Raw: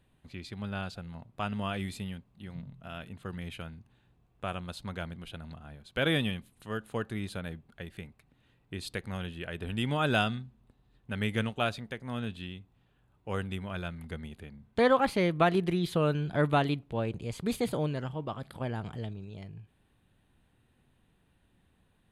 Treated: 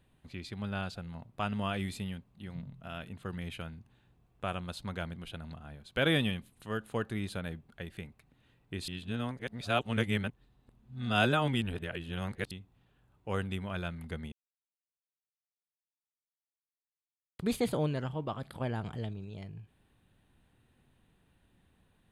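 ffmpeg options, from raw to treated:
-filter_complex "[0:a]asplit=5[s0][s1][s2][s3][s4];[s0]atrim=end=8.882[s5];[s1]atrim=start=8.878:end=12.512,asetpts=PTS-STARTPTS,areverse[s6];[s2]atrim=start=12.508:end=14.32,asetpts=PTS-STARTPTS,afade=t=out:st=1.808:d=0.004:c=hsin[s7];[s3]atrim=start=14.32:end=17.39,asetpts=PTS-STARTPTS,volume=0[s8];[s4]atrim=start=17.39,asetpts=PTS-STARTPTS,afade=t=in:d=0.004:c=hsin[s9];[s5][s6]acrossfade=d=0.004:c1=hsin:c2=hsin[s10];[s7][s8][s9]concat=n=3:v=0:a=1[s11];[s10][s11]acrossfade=d=0.004:c1=hsin:c2=hsin"

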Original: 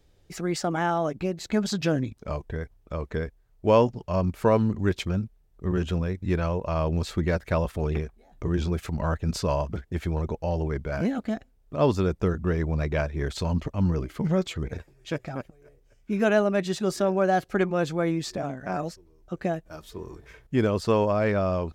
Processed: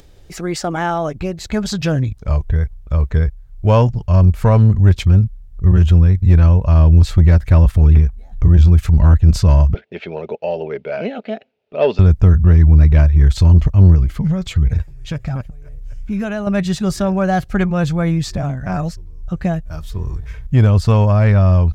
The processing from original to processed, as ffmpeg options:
-filter_complex "[0:a]asettb=1/sr,asplit=3[s0][s1][s2];[s0]atrim=end=9.744[s3];[s1]atrim=start=9.74:end=11.99,asetpts=PTS-STARTPTS,afade=t=in:d=0.004:c=qsin,afade=t=out:st=2.246:d=0.004:c=qsin,highpass=f=270:w=0.5412,highpass=f=270:w=1.3066,equalizer=f=290:t=q:w=4:g=-7,equalizer=f=420:t=q:w=4:g=9,equalizer=f=610:t=q:w=4:g=6,equalizer=f=1100:t=q:w=4:g=-9,equalizer=f=1700:t=q:w=4:g=-4,equalizer=f=2600:t=q:w=4:g=8,lowpass=f=4100:w=0.5412,lowpass=f=4100:w=1.3066[s4];[s2]atrim=start=11.986[s5];[s3][s4]acrossfade=d=0.004:c1=hsin:c2=qsin[s6];[s6][s5]acrossfade=d=0.004:c1=qsin:c2=hsin,asettb=1/sr,asplit=3[s7][s8][s9];[s7]atrim=end=13.954[s10];[s8]atrim=start=13.95:end=16.47,asetpts=PTS-STARTPTS,afade=t=in:d=0.004:c=qsin,afade=t=out:st=2.516:d=0.004:c=qsin,acompressor=threshold=0.0316:ratio=2:attack=3.2:release=140:knee=1:detection=peak[s11];[s9]atrim=start=16.466[s12];[s10][s11]acrossfade=d=0.004:c1=hsin:c2=qsin[s13];[s13][s12]acrossfade=d=0.004:c1=qsin:c2=hsin,acompressor=mode=upward:threshold=0.00562:ratio=2.5,asubboost=boost=11.5:cutoff=100,acontrast=75"

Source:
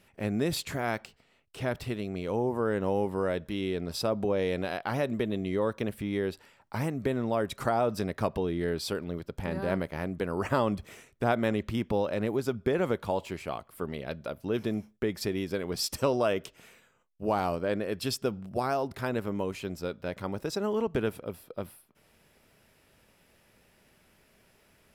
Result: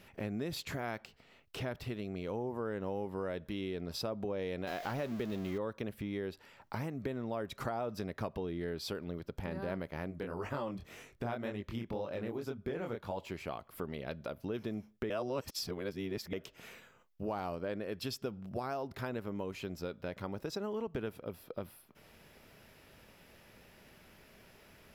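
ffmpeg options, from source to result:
-filter_complex "[0:a]asettb=1/sr,asplit=3[s0][s1][s2];[s0]atrim=end=4.674[s3];[s1]atrim=start=4.67:end=5.58,asetpts=PTS-STARTPTS,afade=t=in:d=0.004:c=qsin,afade=t=out:st=0.906:d=0.004:c=qsin,aeval=exprs='val(0)+0.5*0.02*sgn(val(0))':c=same[s4];[s2]atrim=start=5.576[s5];[s3][s4]acrossfade=d=0.004:c1=hsin:c2=qsin[s6];[s6][s5]acrossfade=d=0.004:c1=qsin:c2=hsin,asplit=3[s7][s8][s9];[s7]afade=t=out:st=10.1:d=0.02[s10];[s8]flanger=delay=20:depth=6.6:speed=1.9,afade=t=in:st=10.1:d=0.02,afade=t=out:st=13.16:d=0.02[s11];[s9]afade=t=in:st=13.16:d=0.02[s12];[s10][s11][s12]amix=inputs=3:normalize=0,asplit=3[s13][s14][s15];[s13]atrim=end=15.102[s16];[s14]atrim=start=15.098:end=16.332,asetpts=PTS-STARTPTS,areverse[s17];[s15]atrim=start=16.328[s18];[s16][s17]acrossfade=d=0.004:c1=hsin:c2=hsin[s19];[s19][s18]acrossfade=d=0.004:c1=hsin:c2=hsin,equalizer=f=8900:t=o:w=0.5:g=-8.5,acompressor=threshold=0.00501:ratio=2.5,volume=1.68"

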